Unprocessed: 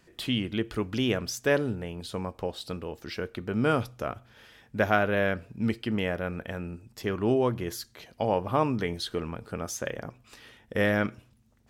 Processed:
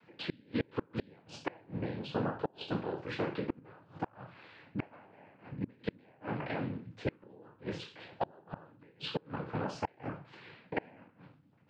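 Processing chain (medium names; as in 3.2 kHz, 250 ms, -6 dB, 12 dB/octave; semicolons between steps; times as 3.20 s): spectral sustain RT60 0.42 s; peaking EQ 290 Hz -5 dB 0.3 oct; noise-vocoded speech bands 8; distance through air 350 m; inverted gate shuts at -22 dBFS, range -31 dB; trim +1 dB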